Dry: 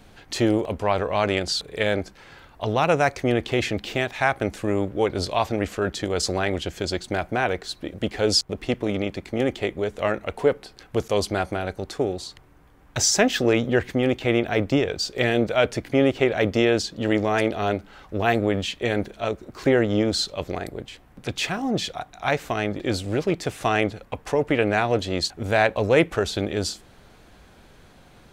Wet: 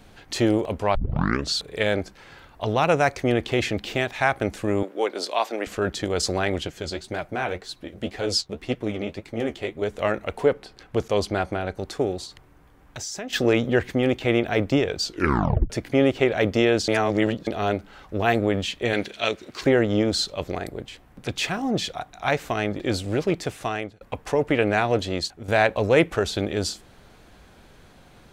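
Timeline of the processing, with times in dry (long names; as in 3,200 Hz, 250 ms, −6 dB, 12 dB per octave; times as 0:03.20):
0:00.95: tape start 0.60 s
0:04.83–0:05.67: Bessel high-pass filter 400 Hz, order 6
0:06.67–0:09.82: flanger 1.9 Hz, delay 5.8 ms, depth 9.5 ms, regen +34%
0:10.45–0:11.75: low-pass filter 6,700 Hz → 3,900 Hz 6 dB per octave
0:12.25–0:13.33: downward compressor 2.5 to 1, threshold −37 dBFS
0:15.04: tape stop 0.66 s
0:16.88–0:17.47: reverse
0:18.93–0:19.61: meter weighting curve D
0:23.37–0:24.01: fade out, to −23 dB
0:25.06–0:25.48: fade out, to −10.5 dB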